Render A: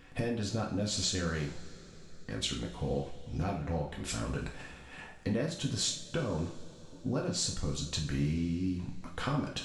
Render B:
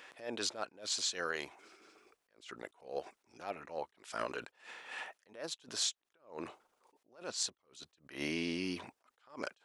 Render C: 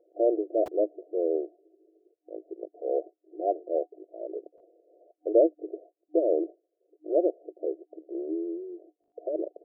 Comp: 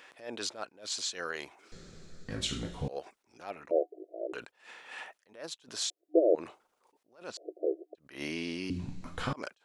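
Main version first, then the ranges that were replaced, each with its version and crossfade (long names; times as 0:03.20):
B
0:01.72–0:02.88: punch in from A
0:03.71–0:04.33: punch in from C
0:05.90–0:06.35: punch in from C
0:07.37–0:07.95: punch in from C
0:08.70–0:09.33: punch in from A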